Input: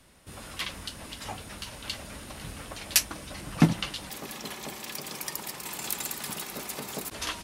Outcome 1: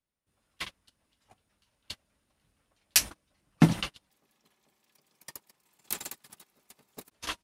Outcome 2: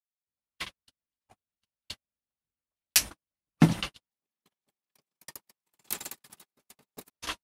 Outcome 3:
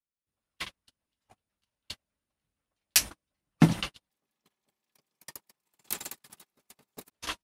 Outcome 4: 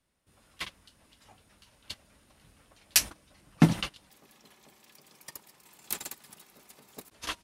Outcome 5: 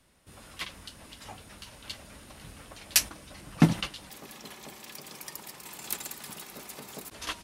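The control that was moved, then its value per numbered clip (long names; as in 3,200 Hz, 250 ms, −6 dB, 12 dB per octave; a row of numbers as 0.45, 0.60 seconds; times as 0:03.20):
noise gate, range: −33, −59, −46, −20, −7 decibels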